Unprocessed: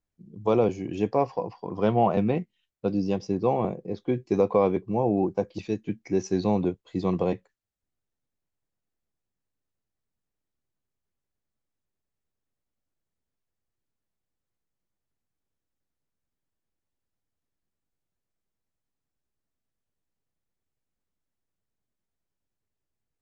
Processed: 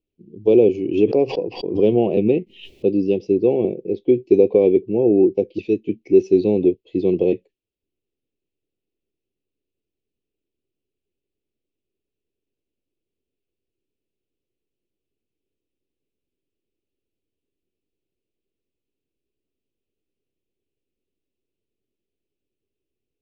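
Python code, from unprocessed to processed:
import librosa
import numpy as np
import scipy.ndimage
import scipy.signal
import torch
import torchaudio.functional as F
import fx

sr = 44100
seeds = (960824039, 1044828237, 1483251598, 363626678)

y = fx.curve_eq(x, sr, hz=(180.0, 390.0, 1400.0, 2600.0, 7600.0), db=(0, 14, -27, 7, -14))
y = fx.pre_swell(y, sr, db_per_s=110.0, at=(0.62, 2.9))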